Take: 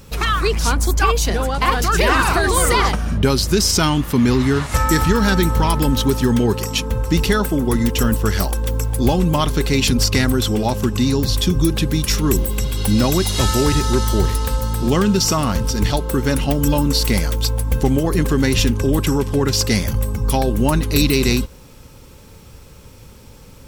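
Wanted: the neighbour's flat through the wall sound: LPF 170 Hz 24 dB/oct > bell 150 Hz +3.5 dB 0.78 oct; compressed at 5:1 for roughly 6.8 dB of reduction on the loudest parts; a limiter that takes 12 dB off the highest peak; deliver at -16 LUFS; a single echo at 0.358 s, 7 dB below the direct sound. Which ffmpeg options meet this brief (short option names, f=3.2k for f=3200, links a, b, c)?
-af "acompressor=threshold=-19dB:ratio=5,alimiter=limit=-19.5dB:level=0:latency=1,lowpass=f=170:w=0.5412,lowpass=f=170:w=1.3066,equalizer=f=150:t=o:w=0.78:g=3.5,aecho=1:1:358:0.447,volume=15.5dB"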